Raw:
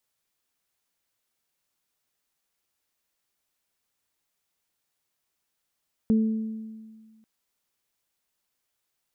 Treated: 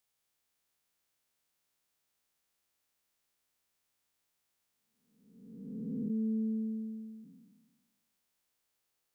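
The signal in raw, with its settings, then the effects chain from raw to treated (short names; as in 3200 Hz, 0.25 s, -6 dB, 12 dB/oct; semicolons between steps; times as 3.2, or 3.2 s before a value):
additive tone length 1.14 s, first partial 220 Hz, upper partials -13 dB, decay 1.72 s, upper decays 1.05 s, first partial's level -16.5 dB
time blur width 0.849 s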